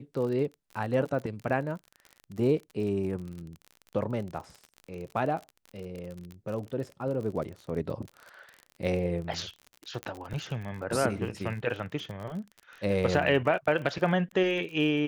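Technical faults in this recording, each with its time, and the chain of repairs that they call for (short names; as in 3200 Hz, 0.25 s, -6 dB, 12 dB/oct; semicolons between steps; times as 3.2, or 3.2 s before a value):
crackle 46/s -36 dBFS
10.03 pop -21 dBFS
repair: de-click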